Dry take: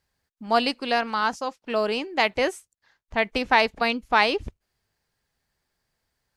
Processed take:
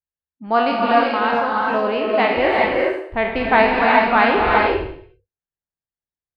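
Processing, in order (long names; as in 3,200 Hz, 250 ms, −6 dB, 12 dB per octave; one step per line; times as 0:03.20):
peak hold with a decay on every bin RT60 0.59 s
high-frequency loss of the air 450 metres
reverb whose tail is shaped and stops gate 440 ms rising, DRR −1.5 dB
noise reduction from a noise print of the clip's start 30 dB
level +4 dB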